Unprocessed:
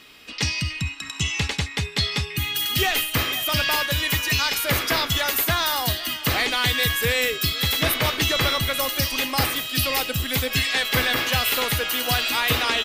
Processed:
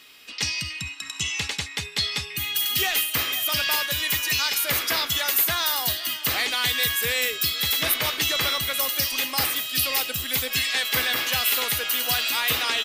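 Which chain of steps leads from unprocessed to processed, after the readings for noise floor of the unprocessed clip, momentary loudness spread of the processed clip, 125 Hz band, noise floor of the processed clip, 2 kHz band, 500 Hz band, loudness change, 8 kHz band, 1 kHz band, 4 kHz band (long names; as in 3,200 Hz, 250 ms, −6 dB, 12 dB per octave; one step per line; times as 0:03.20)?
−37 dBFS, 6 LU, −11.0 dB, −39 dBFS, −2.5 dB, −6.5 dB, −1.0 dB, +1.5 dB, −4.5 dB, −1.0 dB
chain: spectral tilt +2 dB per octave
level −4.5 dB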